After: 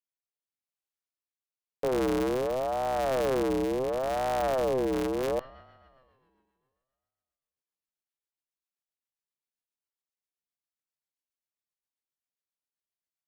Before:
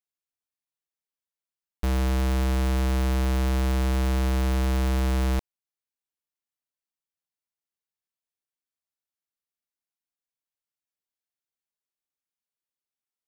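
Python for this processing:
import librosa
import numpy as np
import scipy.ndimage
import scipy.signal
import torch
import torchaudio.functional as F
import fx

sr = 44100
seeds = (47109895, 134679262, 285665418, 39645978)

y = fx.rev_spring(x, sr, rt60_s=2.2, pass_ms=(53,), chirp_ms=50, drr_db=13.5)
y = fx.rotary_switch(y, sr, hz=0.85, then_hz=7.5, switch_at_s=4.64)
y = fx.ring_lfo(y, sr, carrier_hz=530.0, swing_pct=30, hz=0.7)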